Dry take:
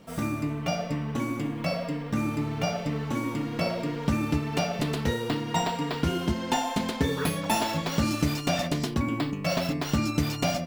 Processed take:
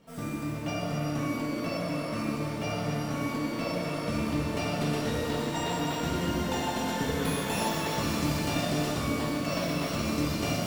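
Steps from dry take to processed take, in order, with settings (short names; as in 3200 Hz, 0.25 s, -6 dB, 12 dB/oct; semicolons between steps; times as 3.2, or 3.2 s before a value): shimmer reverb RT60 3.4 s, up +12 st, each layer -8 dB, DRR -5 dB; gain -8.5 dB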